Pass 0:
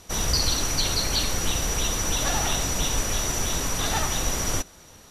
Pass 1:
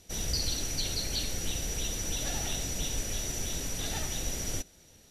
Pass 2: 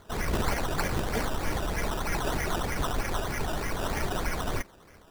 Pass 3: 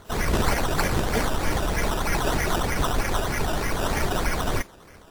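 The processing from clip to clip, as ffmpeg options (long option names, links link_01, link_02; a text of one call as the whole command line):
ffmpeg -i in.wav -af "equalizer=frequency=1100:width=1.6:gain=-12.5,volume=-7.5dB" out.wav
ffmpeg -i in.wav -af "acrusher=samples=16:mix=1:aa=0.000001:lfo=1:lforange=9.6:lforate=3.2,volume=3.5dB" out.wav
ffmpeg -i in.wav -af "volume=5.5dB" -ar 44100 -c:a wmav2 -b:a 64k out.wma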